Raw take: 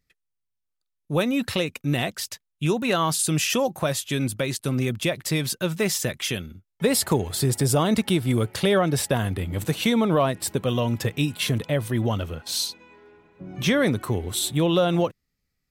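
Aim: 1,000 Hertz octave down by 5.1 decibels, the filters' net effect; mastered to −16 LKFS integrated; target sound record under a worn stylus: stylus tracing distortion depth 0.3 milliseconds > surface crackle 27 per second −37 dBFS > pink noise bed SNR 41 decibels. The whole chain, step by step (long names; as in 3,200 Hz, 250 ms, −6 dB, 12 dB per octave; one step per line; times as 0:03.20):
parametric band 1,000 Hz −7 dB
stylus tracing distortion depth 0.3 ms
surface crackle 27 per second −37 dBFS
pink noise bed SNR 41 dB
level +9 dB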